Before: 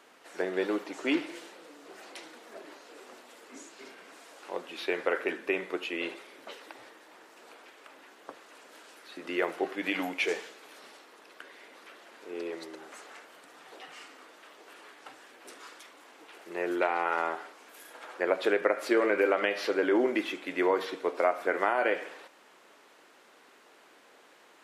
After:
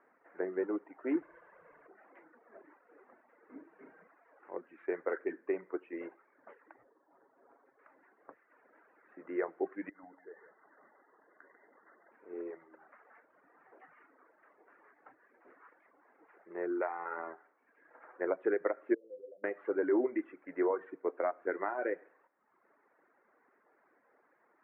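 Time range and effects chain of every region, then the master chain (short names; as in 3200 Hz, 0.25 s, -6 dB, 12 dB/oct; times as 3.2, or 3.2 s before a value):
1.22–1.87 comb 1.9 ms, depth 71% + spectral compressor 2:1
3.49–4.08 bell 190 Hz +9 dB 2.3 oct + comb 6.4 ms, depth 36%
6.83–7.79 LPF 1100 Hz + comb 7.3 ms, depth 46%
9.89–12.12 compressor 3:1, threshold -42 dBFS + brick-wall FIR low-pass 2100 Hz + echo 0.145 s -8 dB
18.94–19.44 elliptic band-stop 530–5700 Hz + compressor 4:1, threshold -28 dBFS + resonator 510 Hz, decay 0.16 s, mix 80%
whole clip: reverb removal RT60 1 s; steep low-pass 2000 Hz 48 dB/oct; dynamic EQ 360 Hz, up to +7 dB, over -43 dBFS, Q 1.5; gain -8.5 dB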